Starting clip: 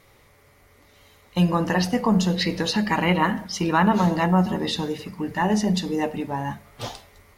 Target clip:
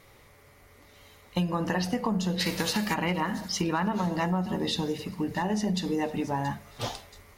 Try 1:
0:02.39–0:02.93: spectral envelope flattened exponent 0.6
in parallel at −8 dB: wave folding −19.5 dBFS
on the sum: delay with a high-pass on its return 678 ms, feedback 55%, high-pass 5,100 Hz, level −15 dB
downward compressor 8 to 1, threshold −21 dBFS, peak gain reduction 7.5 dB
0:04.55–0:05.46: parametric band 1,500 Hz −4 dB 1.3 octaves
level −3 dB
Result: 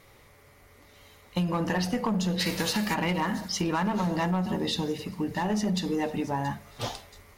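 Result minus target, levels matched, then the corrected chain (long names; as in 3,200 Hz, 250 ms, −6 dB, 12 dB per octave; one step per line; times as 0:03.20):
wave folding: distortion +33 dB
0:02.39–0:02.93: spectral envelope flattened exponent 0.6
in parallel at −8 dB: wave folding −9 dBFS
on the sum: delay with a high-pass on its return 678 ms, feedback 55%, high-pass 5,100 Hz, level −15 dB
downward compressor 8 to 1, threshold −21 dBFS, peak gain reduction 10.5 dB
0:04.55–0:05.46: parametric band 1,500 Hz −4 dB 1.3 octaves
level −3 dB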